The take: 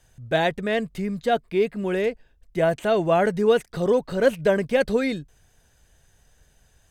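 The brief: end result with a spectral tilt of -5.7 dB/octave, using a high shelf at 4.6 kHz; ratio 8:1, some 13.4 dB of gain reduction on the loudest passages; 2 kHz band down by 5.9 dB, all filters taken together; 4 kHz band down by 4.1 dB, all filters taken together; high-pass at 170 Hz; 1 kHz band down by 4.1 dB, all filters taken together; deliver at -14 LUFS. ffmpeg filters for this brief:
-af "highpass=170,equalizer=f=1000:t=o:g=-6,equalizer=f=2000:t=o:g=-5.5,equalizer=f=4000:t=o:g=-6,highshelf=f=4600:g=7.5,acompressor=threshold=0.0316:ratio=8,volume=11.2"

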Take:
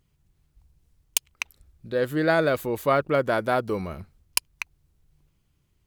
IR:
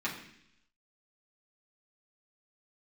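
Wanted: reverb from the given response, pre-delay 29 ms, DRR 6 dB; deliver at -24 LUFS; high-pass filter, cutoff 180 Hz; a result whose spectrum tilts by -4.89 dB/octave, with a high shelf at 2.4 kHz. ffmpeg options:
-filter_complex "[0:a]highpass=180,highshelf=f=2400:g=-8.5,asplit=2[s0][s1];[1:a]atrim=start_sample=2205,adelay=29[s2];[s1][s2]afir=irnorm=-1:irlink=0,volume=0.251[s3];[s0][s3]amix=inputs=2:normalize=0,volume=1.26"

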